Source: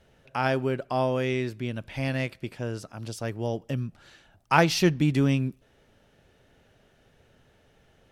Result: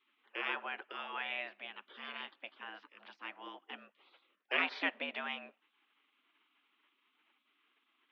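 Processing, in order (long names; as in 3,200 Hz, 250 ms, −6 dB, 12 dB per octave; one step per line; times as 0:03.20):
single-sideband voice off tune +96 Hz 310–3,000 Hz
gate on every frequency bin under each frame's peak −15 dB weak
floating-point word with a short mantissa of 8 bits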